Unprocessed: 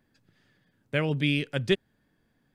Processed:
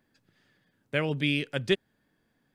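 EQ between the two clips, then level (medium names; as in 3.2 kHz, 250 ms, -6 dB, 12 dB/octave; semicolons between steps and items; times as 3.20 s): bass shelf 150 Hz -7 dB; 0.0 dB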